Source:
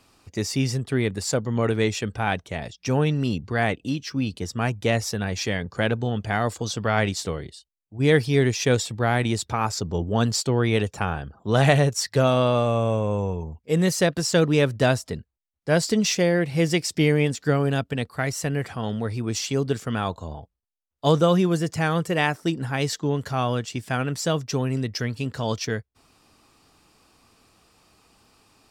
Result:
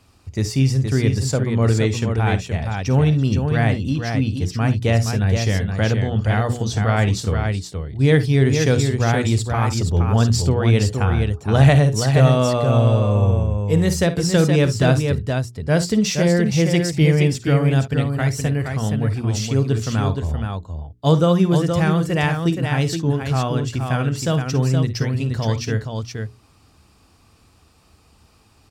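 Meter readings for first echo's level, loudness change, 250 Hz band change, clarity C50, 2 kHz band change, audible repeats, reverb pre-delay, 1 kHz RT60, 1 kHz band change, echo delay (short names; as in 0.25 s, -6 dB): -13.5 dB, +5.0 dB, +5.0 dB, none, +1.5 dB, 2, none, none, +1.5 dB, 52 ms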